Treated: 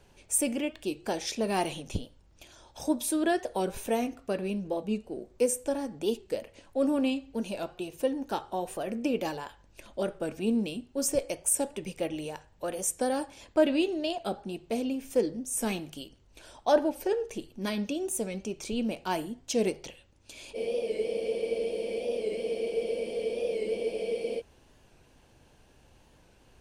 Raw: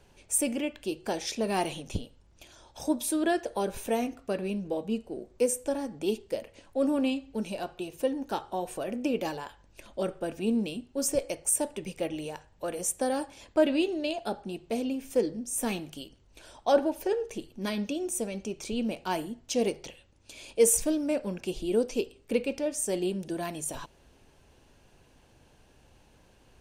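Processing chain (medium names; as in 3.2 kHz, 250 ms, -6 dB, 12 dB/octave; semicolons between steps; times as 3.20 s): spectral freeze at 20.58 s, 3.81 s; warped record 45 rpm, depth 100 cents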